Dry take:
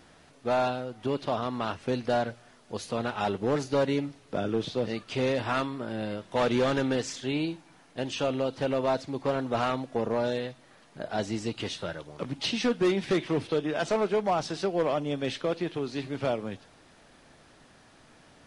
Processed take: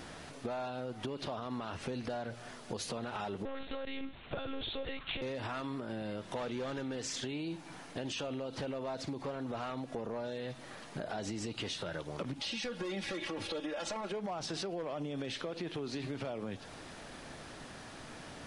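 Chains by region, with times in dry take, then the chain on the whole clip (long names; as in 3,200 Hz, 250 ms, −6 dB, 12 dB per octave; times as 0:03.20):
0:03.45–0:05.22: spectral tilt +3 dB per octave + one-pitch LPC vocoder at 8 kHz 270 Hz
0:12.42–0:14.12: parametric band 260 Hz −14.5 dB 0.39 octaves + comb filter 3.6 ms, depth 95%
whole clip: brickwall limiter −30 dBFS; downward compressor 6 to 1, threshold −44 dBFS; level +8 dB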